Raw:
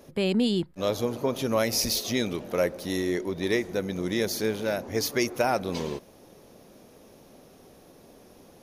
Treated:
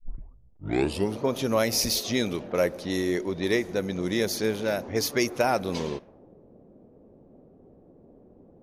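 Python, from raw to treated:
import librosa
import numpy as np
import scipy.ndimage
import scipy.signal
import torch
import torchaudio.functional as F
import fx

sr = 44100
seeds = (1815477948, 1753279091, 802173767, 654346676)

y = fx.tape_start_head(x, sr, length_s=1.23)
y = fx.env_lowpass(y, sr, base_hz=400.0, full_db=-24.5)
y = y * librosa.db_to_amplitude(1.0)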